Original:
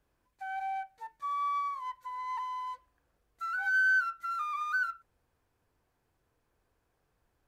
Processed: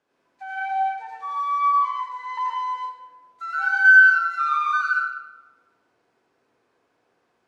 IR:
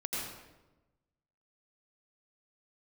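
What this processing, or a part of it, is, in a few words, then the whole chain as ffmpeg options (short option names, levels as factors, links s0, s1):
supermarket ceiling speaker: -filter_complex "[0:a]highpass=270,lowpass=6100[s0];[1:a]atrim=start_sample=2205[s1];[s0][s1]afir=irnorm=-1:irlink=0,volume=2.11"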